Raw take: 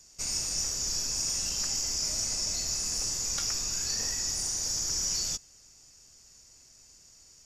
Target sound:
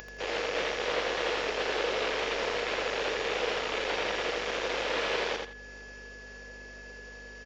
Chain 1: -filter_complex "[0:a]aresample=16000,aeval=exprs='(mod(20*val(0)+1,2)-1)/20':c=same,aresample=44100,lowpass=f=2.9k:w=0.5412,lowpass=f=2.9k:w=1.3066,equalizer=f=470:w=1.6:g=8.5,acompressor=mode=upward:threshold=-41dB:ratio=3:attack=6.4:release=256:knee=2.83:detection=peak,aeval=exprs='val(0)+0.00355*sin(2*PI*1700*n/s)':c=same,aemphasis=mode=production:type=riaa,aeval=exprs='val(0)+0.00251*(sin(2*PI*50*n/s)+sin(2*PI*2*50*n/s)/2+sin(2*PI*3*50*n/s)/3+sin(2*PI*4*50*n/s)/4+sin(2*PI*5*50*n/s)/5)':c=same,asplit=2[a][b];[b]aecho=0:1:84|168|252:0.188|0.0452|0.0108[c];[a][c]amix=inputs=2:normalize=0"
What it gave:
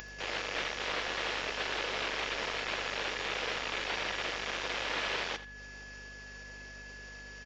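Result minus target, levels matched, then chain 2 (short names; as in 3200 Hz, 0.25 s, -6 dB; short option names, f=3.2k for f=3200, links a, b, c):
echo-to-direct -10.5 dB; 500 Hz band -6.0 dB
-filter_complex "[0:a]aresample=16000,aeval=exprs='(mod(20*val(0)+1,2)-1)/20':c=same,aresample=44100,lowpass=f=2.9k:w=0.5412,lowpass=f=2.9k:w=1.3066,equalizer=f=470:w=1.6:g=19,acompressor=mode=upward:threshold=-41dB:ratio=3:attack=6.4:release=256:knee=2.83:detection=peak,aeval=exprs='val(0)+0.00355*sin(2*PI*1700*n/s)':c=same,aemphasis=mode=production:type=riaa,aeval=exprs='val(0)+0.00251*(sin(2*PI*50*n/s)+sin(2*PI*2*50*n/s)/2+sin(2*PI*3*50*n/s)/3+sin(2*PI*4*50*n/s)/4+sin(2*PI*5*50*n/s)/5)':c=same,asplit=2[a][b];[b]aecho=0:1:84|168|252:0.631|0.151|0.0363[c];[a][c]amix=inputs=2:normalize=0"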